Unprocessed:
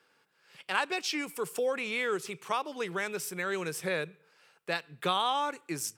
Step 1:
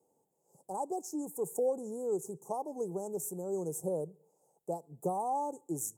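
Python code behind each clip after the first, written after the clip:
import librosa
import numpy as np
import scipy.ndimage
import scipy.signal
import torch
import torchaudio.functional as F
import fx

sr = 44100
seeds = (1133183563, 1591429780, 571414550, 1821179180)

y = scipy.signal.sosfilt(scipy.signal.cheby1(4, 1.0, [840.0, 6800.0], 'bandstop', fs=sr, output='sos'), x)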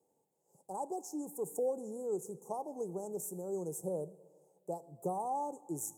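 y = fx.rev_plate(x, sr, seeds[0], rt60_s=1.6, hf_ratio=0.65, predelay_ms=0, drr_db=16.5)
y = y * 10.0 ** (-3.0 / 20.0)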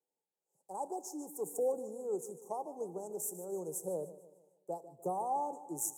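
y = fx.highpass(x, sr, hz=310.0, slope=6)
y = fx.echo_feedback(y, sr, ms=150, feedback_pct=55, wet_db=-14.5)
y = fx.band_widen(y, sr, depth_pct=40)
y = y * 10.0 ** (1.0 / 20.0)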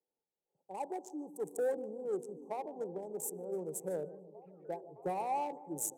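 y = fx.wiener(x, sr, points=25)
y = 10.0 ** (-26.5 / 20.0) * np.tanh(y / 10.0 ** (-26.5 / 20.0))
y = fx.echo_stepped(y, sr, ms=612, hz=210.0, octaves=0.7, feedback_pct=70, wet_db=-11.0)
y = y * 10.0 ** (1.5 / 20.0)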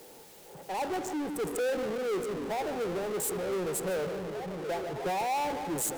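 y = fx.power_curve(x, sr, exponent=0.35)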